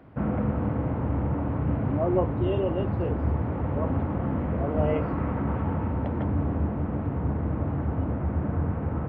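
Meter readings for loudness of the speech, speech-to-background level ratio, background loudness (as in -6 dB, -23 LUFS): -32.0 LUFS, -3.5 dB, -28.5 LUFS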